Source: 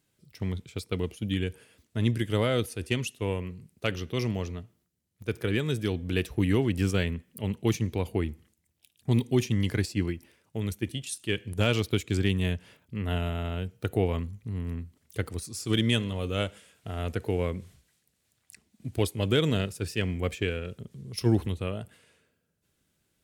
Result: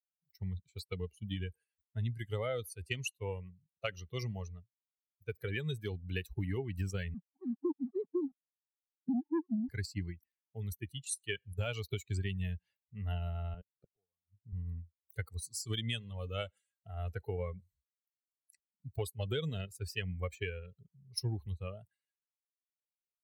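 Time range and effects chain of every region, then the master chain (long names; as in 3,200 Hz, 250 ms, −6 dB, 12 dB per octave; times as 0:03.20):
0:07.14–0:09.69: three sine waves on the formant tracks + flat-topped band-pass 240 Hz, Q 1.1 + leveller curve on the samples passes 2
0:13.54–0:14.53: high-pass filter 110 Hz + gate with flip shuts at −25 dBFS, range −29 dB + head-to-tape spacing loss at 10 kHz 22 dB
whole clip: spectral dynamics exaggerated over time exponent 2; notch filter 6,800 Hz, Q 27; downward compressor, threshold −35 dBFS; level +2.5 dB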